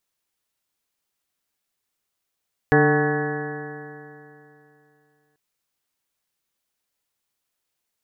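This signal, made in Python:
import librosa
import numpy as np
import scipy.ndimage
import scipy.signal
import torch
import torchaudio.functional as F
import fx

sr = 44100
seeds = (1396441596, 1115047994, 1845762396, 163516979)

y = fx.additive_stiff(sr, length_s=2.64, hz=146.0, level_db=-19.0, upper_db=(0, 3.0, -11.5, -2, -14, -9.5, -16.5, -8.5, -0.5, -10.5), decay_s=2.86, stiffness=0.0036)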